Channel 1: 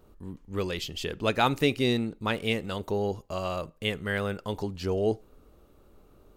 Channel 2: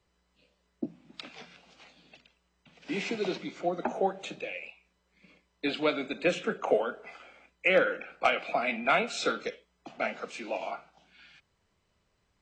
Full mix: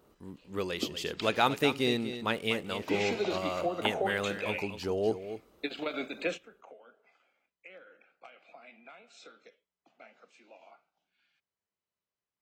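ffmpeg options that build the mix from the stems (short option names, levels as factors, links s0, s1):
-filter_complex "[0:a]volume=0.841,asplit=3[s0][s1][s2];[s1]volume=0.282[s3];[1:a]acompressor=threshold=0.0398:ratio=10,volume=1.33[s4];[s2]apad=whole_len=547540[s5];[s4][s5]sidechaingate=range=0.0794:threshold=0.00141:ratio=16:detection=peak[s6];[s3]aecho=0:1:243:1[s7];[s0][s6][s7]amix=inputs=3:normalize=0,highpass=f=240:p=1"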